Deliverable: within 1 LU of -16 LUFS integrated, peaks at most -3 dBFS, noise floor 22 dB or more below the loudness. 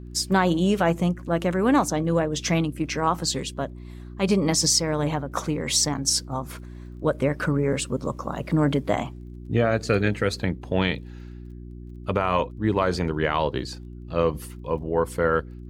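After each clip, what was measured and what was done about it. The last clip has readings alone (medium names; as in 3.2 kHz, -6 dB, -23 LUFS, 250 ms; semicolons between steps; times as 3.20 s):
tick rate 22 per s; hum 60 Hz; highest harmonic 360 Hz; hum level -37 dBFS; loudness -24.0 LUFS; peak level -8.0 dBFS; loudness target -16.0 LUFS
-> de-click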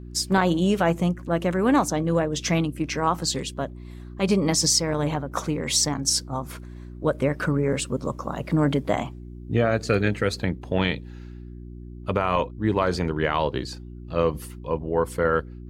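tick rate 0 per s; hum 60 Hz; highest harmonic 360 Hz; hum level -37 dBFS
-> de-hum 60 Hz, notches 6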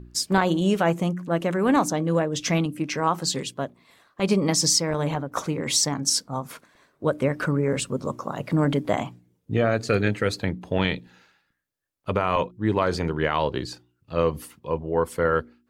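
hum not found; loudness -24.5 LUFS; peak level -8.0 dBFS; loudness target -16.0 LUFS
-> trim +8.5 dB; peak limiter -3 dBFS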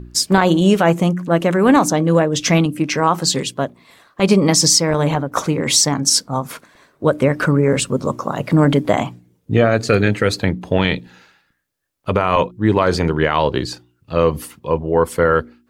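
loudness -16.5 LUFS; peak level -3.0 dBFS; noise floor -62 dBFS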